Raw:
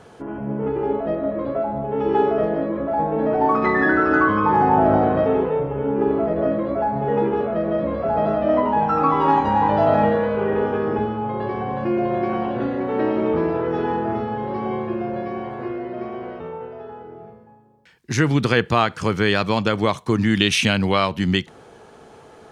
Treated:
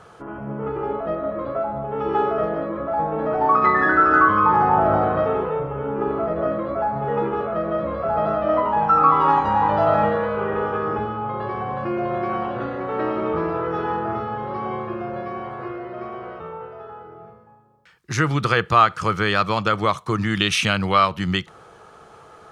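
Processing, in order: graphic EQ with 31 bands 250 Hz -11 dB, 400 Hz -3 dB, 1.25 kHz +11 dB; trim -1.5 dB

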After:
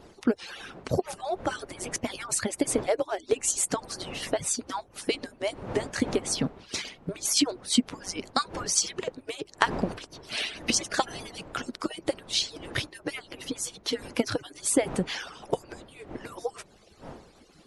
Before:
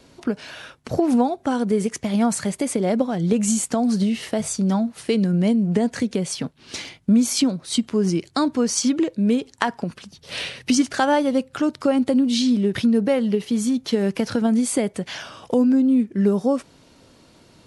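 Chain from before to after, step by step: harmonic-percussive separation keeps percussive; wind noise 570 Hz -45 dBFS

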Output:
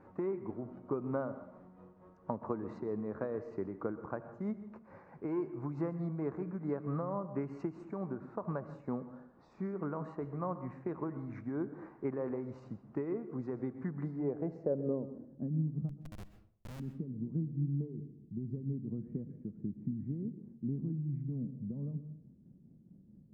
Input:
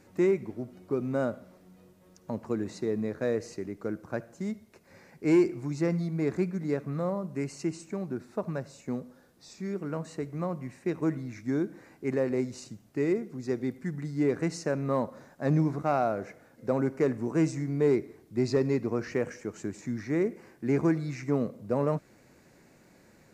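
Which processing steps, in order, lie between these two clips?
treble shelf 5.4 kHz +7.5 dB; compression 20:1, threshold -31 dBFS, peak gain reduction 14 dB; low-pass sweep 1.1 kHz -> 190 Hz, 13.99–15.63 s; tremolo triangle 4.5 Hz, depth 50%; 15.89–16.80 s: Schmitt trigger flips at -40.5 dBFS; reverberation RT60 0.60 s, pre-delay 117 ms, DRR 12.5 dB

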